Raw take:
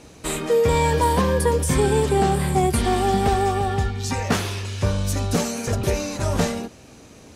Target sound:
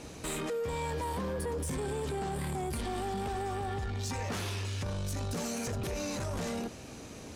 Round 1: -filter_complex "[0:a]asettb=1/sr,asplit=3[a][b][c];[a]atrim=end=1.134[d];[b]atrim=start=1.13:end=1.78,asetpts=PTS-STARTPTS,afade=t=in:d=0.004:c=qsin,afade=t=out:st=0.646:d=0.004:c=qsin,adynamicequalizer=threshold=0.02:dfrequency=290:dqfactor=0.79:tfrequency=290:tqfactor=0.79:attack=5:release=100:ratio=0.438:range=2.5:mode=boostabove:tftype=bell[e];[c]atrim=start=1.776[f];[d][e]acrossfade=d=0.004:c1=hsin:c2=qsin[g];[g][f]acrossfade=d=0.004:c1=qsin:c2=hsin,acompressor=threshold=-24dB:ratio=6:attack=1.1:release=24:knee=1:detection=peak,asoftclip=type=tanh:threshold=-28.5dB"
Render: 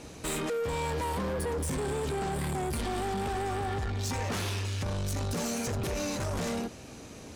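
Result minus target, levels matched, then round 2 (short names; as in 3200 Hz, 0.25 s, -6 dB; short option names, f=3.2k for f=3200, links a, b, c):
compressor: peak gain reduction -6 dB
-filter_complex "[0:a]asettb=1/sr,asplit=3[a][b][c];[a]atrim=end=1.134[d];[b]atrim=start=1.13:end=1.78,asetpts=PTS-STARTPTS,afade=t=in:d=0.004:c=qsin,afade=t=out:st=0.646:d=0.004:c=qsin,adynamicequalizer=threshold=0.02:dfrequency=290:dqfactor=0.79:tfrequency=290:tqfactor=0.79:attack=5:release=100:ratio=0.438:range=2.5:mode=boostabove:tftype=bell[e];[c]atrim=start=1.776[f];[d][e]acrossfade=d=0.004:c1=hsin:c2=qsin[g];[g][f]acrossfade=d=0.004:c1=qsin:c2=hsin,acompressor=threshold=-31dB:ratio=6:attack=1.1:release=24:knee=1:detection=peak,asoftclip=type=tanh:threshold=-28.5dB"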